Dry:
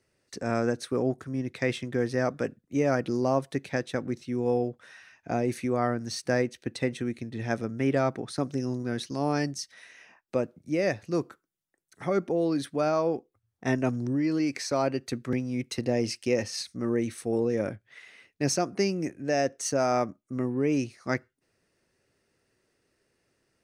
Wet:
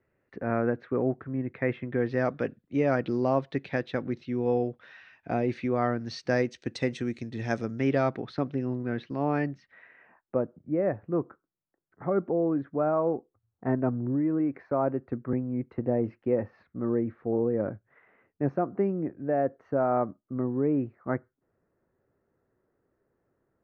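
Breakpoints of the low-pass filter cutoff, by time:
low-pass filter 24 dB per octave
0:01.78 2,100 Hz
0:02.21 3,900 Hz
0:06.01 3,900 Hz
0:06.62 6,800 Hz
0:07.57 6,800 Hz
0:08.68 2,700 Hz
0:09.32 2,700 Hz
0:10.44 1,400 Hz

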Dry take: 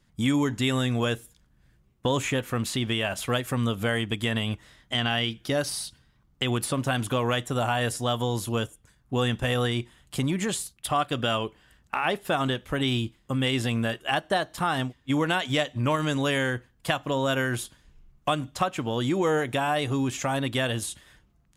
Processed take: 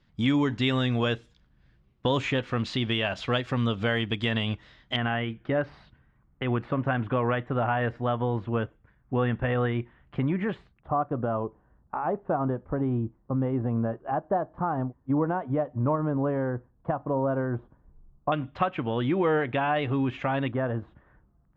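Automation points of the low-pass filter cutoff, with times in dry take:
low-pass filter 24 dB per octave
4,700 Hz
from 0:04.96 2,100 Hz
from 0:10.80 1,100 Hz
from 0:18.32 2,800 Hz
from 0:20.52 1,400 Hz

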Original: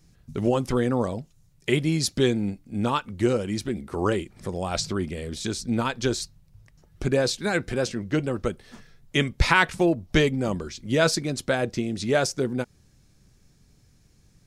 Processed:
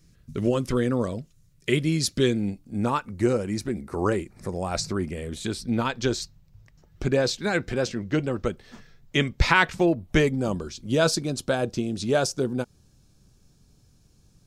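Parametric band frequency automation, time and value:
parametric band −11 dB 0.4 octaves
0:02.34 810 Hz
0:02.79 3,200 Hz
0:05.01 3,200 Hz
0:05.91 10,000 Hz
0:09.86 10,000 Hz
0:10.42 2,000 Hz

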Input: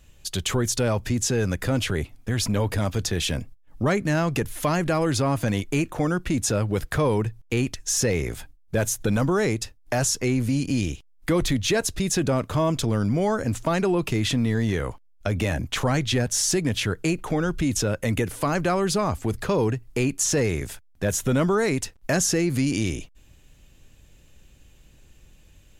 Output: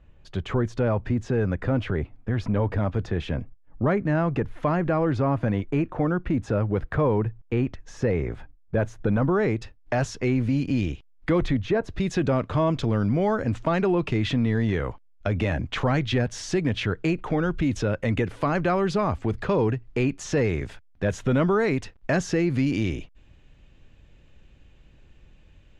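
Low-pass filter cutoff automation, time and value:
0:09.20 1,600 Hz
0:09.78 2,800 Hz
0:11.35 2,800 Hz
0:11.82 1,200 Hz
0:12.02 3,000 Hz

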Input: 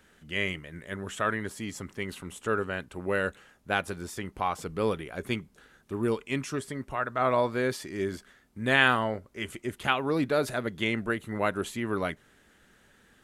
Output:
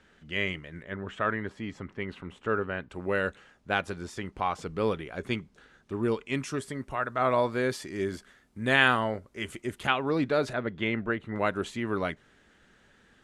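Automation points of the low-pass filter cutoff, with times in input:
5,400 Hz
from 0:00.83 2,700 Hz
from 0:02.90 6,400 Hz
from 0:06.34 11,000 Hz
from 0:09.87 5,900 Hz
from 0:10.53 2,900 Hz
from 0:11.36 6,500 Hz

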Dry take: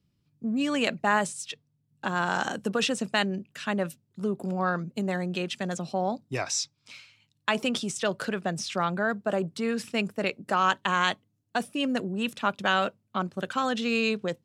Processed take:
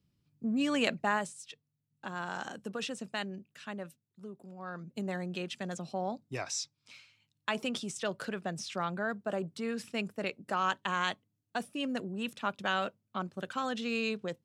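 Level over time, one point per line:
0:00.95 −3 dB
0:01.35 −11 dB
0:03.53 −11 dB
0:04.55 −19 dB
0:04.97 −7 dB

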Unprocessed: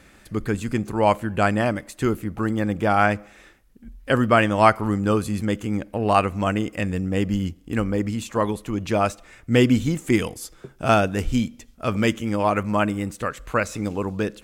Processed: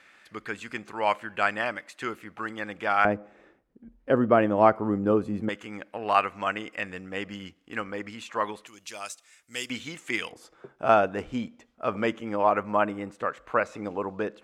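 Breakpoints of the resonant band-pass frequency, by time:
resonant band-pass, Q 0.79
2,000 Hz
from 0:03.05 440 Hz
from 0:05.49 1,700 Hz
from 0:08.67 7,700 Hz
from 0:09.70 2,400 Hz
from 0:10.32 840 Hz

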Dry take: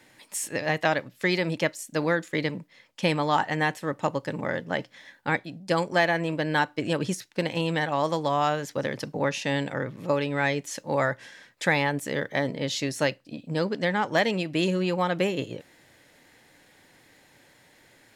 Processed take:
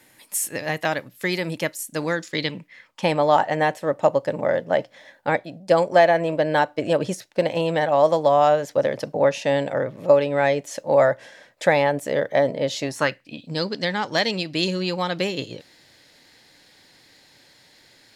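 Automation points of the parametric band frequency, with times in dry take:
parametric band +12.5 dB 0.81 octaves
0:01.83 12,000 Hz
0:02.59 2,800 Hz
0:03.17 610 Hz
0:12.80 610 Hz
0:13.49 4,500 Hz

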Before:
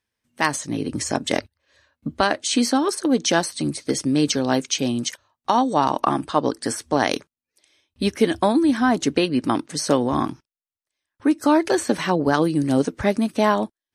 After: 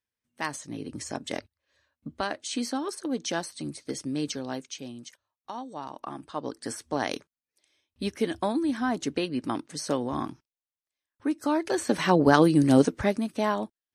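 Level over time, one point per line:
0:04.25 −11 dB
0:05.04 −19 dB
0:05.97 −19 dB
0:06.73 −9 dB
0:11.64 −9 dB
0:12.17 +0.5 dB
0:12.82 +0.5 dB
0:13.23 −8 dB

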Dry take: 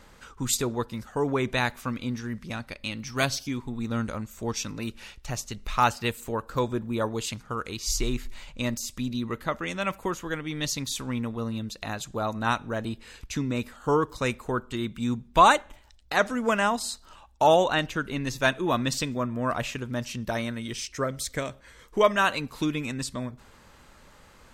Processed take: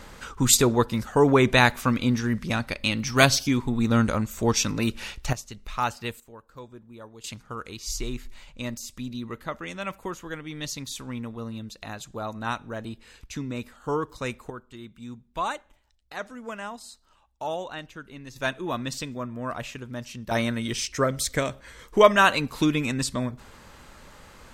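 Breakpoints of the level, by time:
+8 dB
from 0:05.33 −4.5 dB
from 0:06.20 −16.5 dB
from 0:07.24 −4 dB
from 0:14.50 −12 dB
from 0:18.36 −4.5 dB
from 0:20.31 +5 dB

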